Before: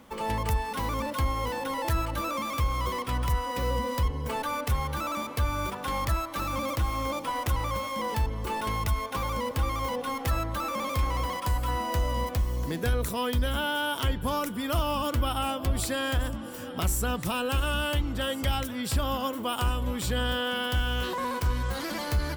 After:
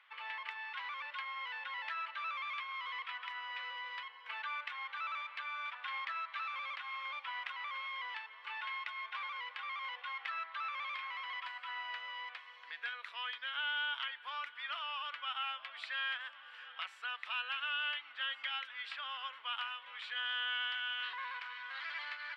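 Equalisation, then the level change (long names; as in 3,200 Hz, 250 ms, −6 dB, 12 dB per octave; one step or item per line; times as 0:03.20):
Bessel high-pass filter 2,900 Hz, order 4
high-frequency loss of the air 480 metres
head-to-tape spacing loss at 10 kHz 30 dB
+16.5 dB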